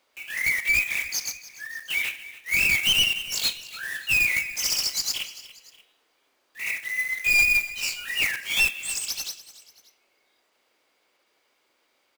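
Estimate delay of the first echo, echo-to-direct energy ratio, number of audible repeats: 291 ms, -16.0 dB, 2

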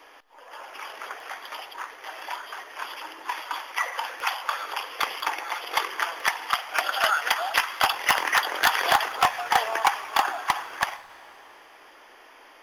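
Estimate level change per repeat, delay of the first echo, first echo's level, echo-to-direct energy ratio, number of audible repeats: no echo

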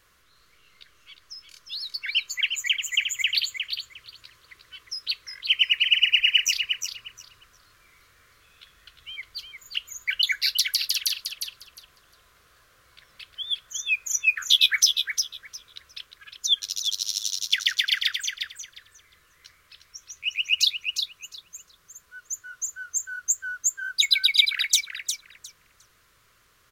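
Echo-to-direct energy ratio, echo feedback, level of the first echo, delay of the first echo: -6.5 dB, 18%, -6.5 dB, 356 ms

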